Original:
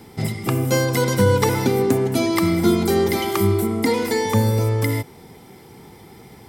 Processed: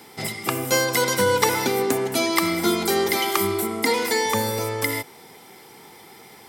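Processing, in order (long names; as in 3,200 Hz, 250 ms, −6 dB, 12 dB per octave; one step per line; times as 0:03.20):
high-pass filter 870 Hz 6 dB per octave
level +4 dB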